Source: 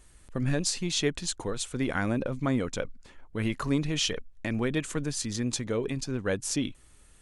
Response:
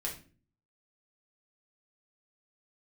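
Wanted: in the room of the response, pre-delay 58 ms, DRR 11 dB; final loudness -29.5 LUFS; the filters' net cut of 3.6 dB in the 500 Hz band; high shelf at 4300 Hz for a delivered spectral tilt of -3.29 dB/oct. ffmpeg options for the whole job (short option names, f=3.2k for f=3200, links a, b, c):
-filter_complex "[0:a]equalizer=f=500:t=o:g=-4.5,highshelf=f=4.3k:g=6.5,asplit=2[a][b];[1:a]atrim=start_sample=2205,adelay=58[c];[b][c]afir=irnorm=-1:irlink=0,volume=-13dB[d];[a][d]amix=inputs=2:normalize=0,volume=-0.5dB"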